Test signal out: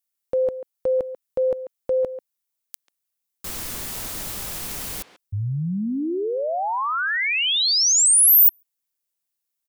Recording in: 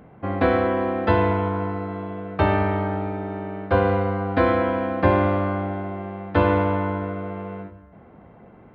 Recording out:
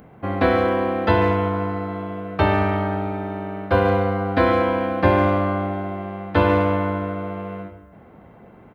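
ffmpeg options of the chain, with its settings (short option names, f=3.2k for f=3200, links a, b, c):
-filter_complex "[0:a]crystalizer=i=2:c=0,asplit=2[a][b];[b]adelay=140,highpass=300,lowpass=3.4k,asoftclip=type=hard:threshold=-14dB,volume=-12dB[c];[a][c]amix=inputs=2:normalize=0,volume=1dB"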